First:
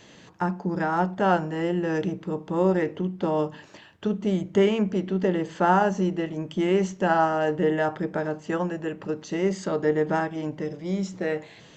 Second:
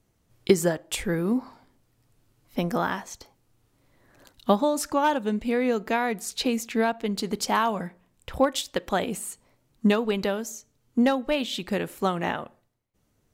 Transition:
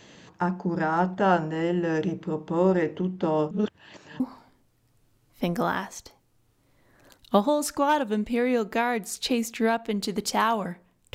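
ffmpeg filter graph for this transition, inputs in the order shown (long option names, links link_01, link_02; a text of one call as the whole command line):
ffmpeg -i cue0.wav -i cue1.wav -filter_complex "[0:a]apad=whole_dur=11.14,atrim=end=11.14,asplit=2[link_01][link_02];[link_01]atrim=end=3.512[link_03];[link_02]atrim=start=3.508:end=4.202,asetpts=PTS-STARTPTS,areverse[link_04];[1:a]atrim=start=1.348:end=8.29[link_05];[link_03][link_04]acrossfade=duration=0.004:curve1=hsin:curve2=hsin[link_06];[link_06][link_05]acrossfade=duration=0.004:curve1=hsin:curve2=hsin" out.wav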